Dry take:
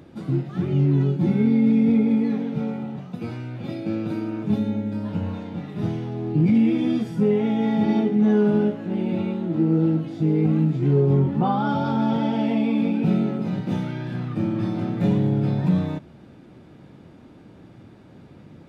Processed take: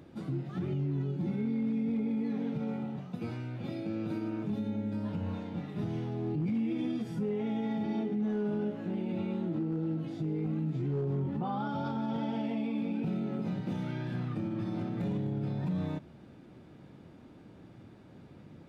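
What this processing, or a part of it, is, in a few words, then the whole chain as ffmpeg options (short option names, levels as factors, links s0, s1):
clipper into limiter: -af "asoftclip=type=hard:threshold=0.251,alimiter=limit=0.1:level=0:latency=1:release=91,volume=0.501"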